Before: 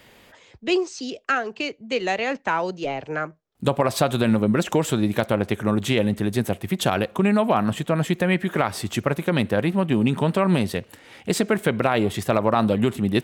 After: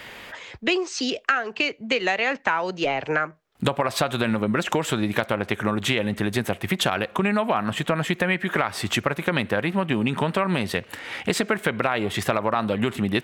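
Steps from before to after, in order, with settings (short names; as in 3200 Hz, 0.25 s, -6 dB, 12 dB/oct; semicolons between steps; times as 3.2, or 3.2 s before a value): bell 1800 Hz +9 dB 2.6 oct; compressor 4:1, threshold -26 dBFS, peak gain reduction 14.5 dB; gain +5 dB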